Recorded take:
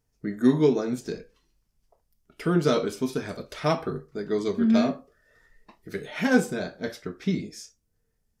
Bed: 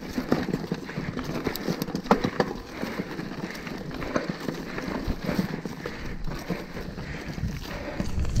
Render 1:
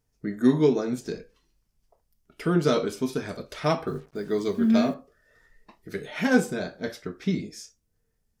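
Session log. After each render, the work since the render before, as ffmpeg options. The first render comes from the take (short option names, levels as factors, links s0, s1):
-filter_complex "[0:a]asettb=1/sr,asplit=3[s0][s1][s2];[s0]atrim=end=3.874[s3];[s1]atrim=start=3.87:end=4.94,asetpts=PTS-STARTPTS,afade=t=in:d=0.004:c=qsin,afade=t=out:st=1.066:d=0.004:c=qsin,acrusher=bits=8:mix=0:aa=0.5[s4];[s2]atrim=start=4.936[s5];[s3][s4]acrossfade=d=0.004:c1=hsin:c2=qsin[s6];[s6][s5]acrossfade=d=0.004:c1=qsin:c2=hsin"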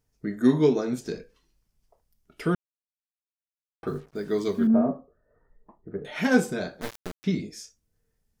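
-filter_complex "[0:a]asettb=1/sr,asplit=3[s0][s1][s2];[s0]atrim=end=4.674[s3];[s1]atrim=start=4.67:end=6.05,asetpts=PTS-STARTPTS,afade=t=in:d=0.004:c=qsin,afade=t=out:st=1.376:d=0.004:c=qsin,lowpass=f=1100:w=0.5412,lowpass=f=1100:w=1.3066[s4];[s2]atrim=start=6.046[s5];[s3][s4]acrossfade=d=0.004:c1=hsin:c2=qsin[s6];[s6][s5]acrossfade=d=0.004:c1=qsin:c2=hsin,asettb=1/sr,asplit=3[s7][s8][s9];[s7]atrim=end=6.814[s10];[s8]atrim=start=6.81:end=7.24,asetpts=PTS-STARTPTS,afade=t=in:d=0.004:c=qsin,afade=t=out:st=0.426:d=0.004:c=qsin,acrusher=bits=3:dc=4:mix=0:aa=0.000001[s11];[s9]atrim=start=7.236[s12];[s10][s11]acrossfade=d=0.004:c1=hsin:c2=qsin[s13];[s13][s12]acrossfade=d=0.004:c1=qsin:c2=hsin,asplit=3[s14][s15][s16];[s14]atrim=end=2.55,asetpts=PTS-STARTPTS,afade=t=out:st=2.546:d=0.004:c=hsin[s17];[s15]atrim=start=2.55:end=3.83,asetpts=PTS-STARTPTS,volume=0[s18];[s16]atrim=start=3.83,asetpts=PTS-STARTPTS,afade=t=in:d=0.004:c=hsin[s19];[s17][s18][s19]concat=n=3:v=0:a=1"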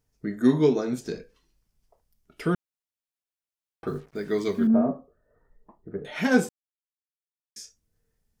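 -filter_complex "[0:a]asettb=1/sr,asplit=3[s0][s1][s2];[s0]atrim=end=4.074[s3];[s1]atrim=start=4.07:end=4.6,asetpts=PTS-STARTPTS,afade=t=in:d=0.004:c=qsin,afade=t=out:st=0.526:d=0.004:c=qsin,equalizer=f=2100:t=o:w=0.58:g=6[s4];[s2]atrim=start=4.596[s5];[s3][s4]acrossfade=d=0.004:c1=hsin:c2=qsin[s6];[s6][s5]acrossfade=d=0.004:c1=qsin:c2=hsin,asplit=3[s7][s8][s9];[s7]atrim=end=6.49,asetpts=PTS-STARTPTS,afade=t=out:st=6.486:d=0.004:c=hsin[s10];[s8]atrim=start=6.49:end=7.56,asetpts=PTS-STARTPTS,volume=0[s11];[s9]atrim=start=7.56,asetpts=PTS-STARTPTS,afade=t=in:d=0.004:c=hsin[s12];[s10][s11][s12]concat=n=3:v=0:a=1"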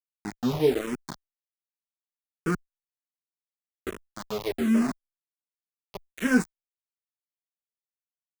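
-filter_complex "[0:a]aeval=exprs='val(0)*gte(abs(val(0)),0.0531)':c=same,asplit=2[s0][s1];[s1]afreqshift=-1.3[s2];[s0][s2]amix=inputs=2:normalize=1"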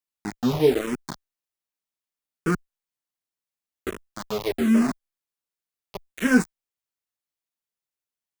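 -af "volume=1.5"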